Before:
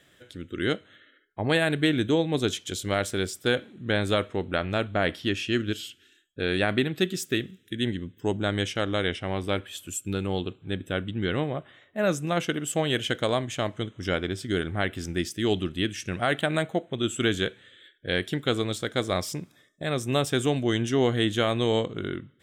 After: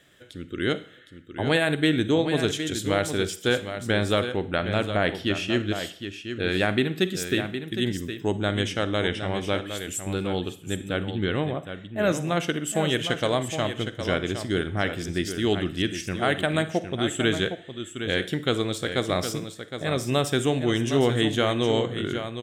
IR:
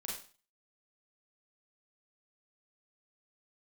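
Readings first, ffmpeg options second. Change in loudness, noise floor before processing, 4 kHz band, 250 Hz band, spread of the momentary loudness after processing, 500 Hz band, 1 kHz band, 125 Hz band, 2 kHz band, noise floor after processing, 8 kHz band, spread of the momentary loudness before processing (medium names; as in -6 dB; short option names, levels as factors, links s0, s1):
+1.5 dB, -61 dBFS, +1.5 dB, +2.0 dB, 8 LU, +1.5 dB, +1.5 dB, +1.5 dB, +1.5 dB, -46 dBFS, +1.5 dB, 8 LU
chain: -filter_complex "[0:a]aecho=1:1:763:0.355,asplit=2[s0][s1];[1:a]atrim=start_sample=2205,asetrate=37485,aresample=44100[s2];[s1][s2]afir=irnorm=-1:irlink=0,volume=0.237[s3];[s0][s3]amix=inputs=2:normalize=0"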